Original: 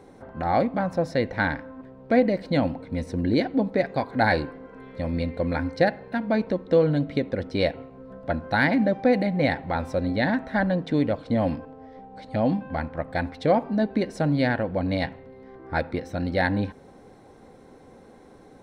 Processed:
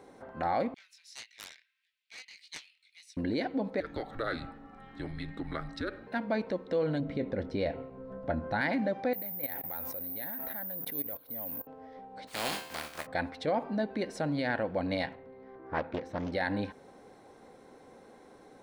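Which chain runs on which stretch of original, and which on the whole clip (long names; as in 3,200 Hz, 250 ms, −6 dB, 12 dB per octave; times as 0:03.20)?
0:00.74–0:03.17: Butterworth high-pass 2,400 Hz + chorus effect 1.7 Hz, delay 17.5 ms, depth 6.5 ms + highs frequency-modulated by the lows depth 0.73 ms
0:03.80–0:06.07: downward compressor, threshold −25 dBFS + frequency shifter −240 Hz
0:07.00–0:08.61: spectral tilt −2.5 dB per octave + double-tracking delay 25 ms −13.5 dB
0:09.13–0:11.67: output level in coarse steps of 20 dB + bad sample-rate conversion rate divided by 3×, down none, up zero stuff
0:12.27–0:13.05: compressing power law on the bin magnitudes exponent 0.31 + tuned comb filter 75 Hz, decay 0.66 s, mix 70%
0:15.15–0:16.32: high-shelf EQ 3,000 Hz −11.5 dB + highs frequency-modulated by the lows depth 0.62 ms
whole clip: brickwall limiter −17.5 dBFS; low-shelf EQ 210 Hz −11.5 dB; level −2 dB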